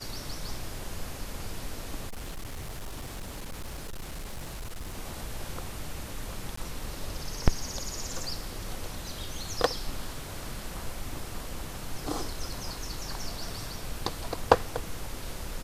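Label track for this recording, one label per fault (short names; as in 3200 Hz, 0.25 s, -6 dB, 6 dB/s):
2.070000	4.990000	clipped -33.5 dBFS
6.560000	6.570000	gap 14 ms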